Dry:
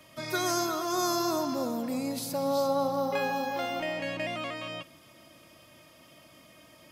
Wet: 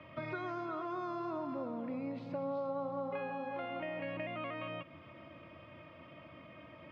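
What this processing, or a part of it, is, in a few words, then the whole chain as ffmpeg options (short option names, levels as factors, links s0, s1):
bass amplifier: -af "acompressor=threshold=0.00891:ratio=4,highpass=80,equalizer=f=86:t=q:w=4:g=7,equalizer=f=240:t=q:w=4:g=-3,equalizer=f=400:t=q:w=4:g=-4,equalizer=f=770:t=q:w=4:g=-5,equalizer=f=1700:t=q:w=4:g=-5,lowpass=f=2400:w=0.5412,lowpass=f=2400:w=1.3066,volume=1.68"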